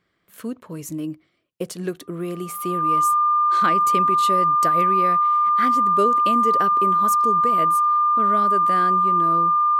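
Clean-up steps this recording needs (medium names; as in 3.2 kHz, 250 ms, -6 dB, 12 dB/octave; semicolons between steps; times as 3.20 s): band-stop 1.2 kHz, Q 30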